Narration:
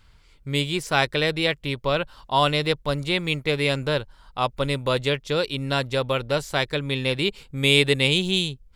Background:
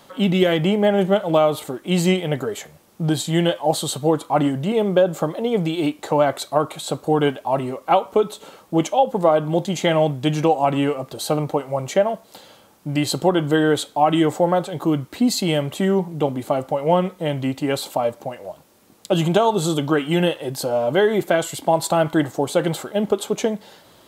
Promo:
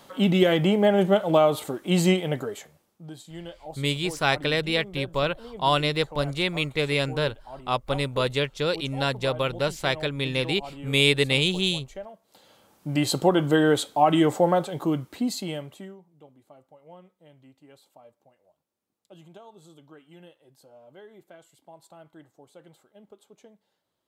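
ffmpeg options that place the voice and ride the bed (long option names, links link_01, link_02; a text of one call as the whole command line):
ffmpeg -i stem1.wav -i stem2.wav -filter_complex "[0:a]adelay=3300,volume=-2dB[link_01];[1:a]volume=16dB,afade=type=out:start_time=2.09:duration=0.9:silence=0.11885,afade=type=in:start_time=12.21:duration=0.84:silence=0.11885,afade=type=out:start_time=14.47:duration=1.5:silence=0.0375837[link_02];[link_01][link_02]amix=inputs=2:normalize=0" out.wav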